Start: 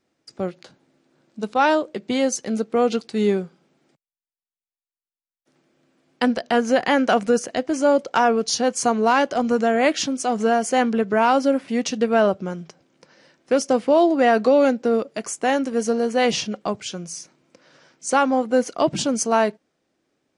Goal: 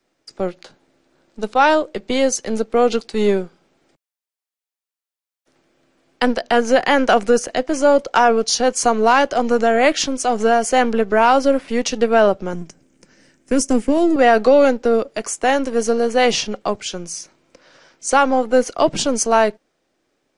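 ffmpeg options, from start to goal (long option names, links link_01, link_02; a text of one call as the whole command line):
ffmpeg -i in.wav -filter_complex "[0:a]asettb=1/sr,asplit=3[link_01][link_02][link_03];[link_01]atrim=end=12.534[link_04];[link_02]atrim=start=12.53:end=14.16,asetpts=PTS-STARTPTS,afade=type=in:duration=0.004:curve=qsin,afade=type=out:start_time=1.626:duration=0.004:curve=qsin,equalizer=frequency=125:width_type=o:width=1:gain=4,equalizer=frequency=250:width_type=o:width=1:gain=8,equalizer=frequency=500:width_type=o:width=1:gain=-7,equalizer=frequency=1000:width_type=o:width=1:gain=-9,equalizer=frequency=4000:width_type=o:width=1:gain=-10,equalizer=frequency=8000:width_type=o:width=1:gain=9[link_05];[link_03]atrim=start=14.156[link_06];[link_04][link_05]acrossfade=duration=0.004:curve1=hsin:curve2=qsin[link_07];[link_07][link_06]acrossfade=duration=0.004:curve1=qsin:curve2=hsin,acrossover=split=330|1100[link_08][link_09][link_10];[link_08]aeval=exprs='max(val(0),0)':channel_layout=same[link_11];[link_11][link_09][link_10]amix=inputs=3:normalize=0,volume=4.5dB" out.wav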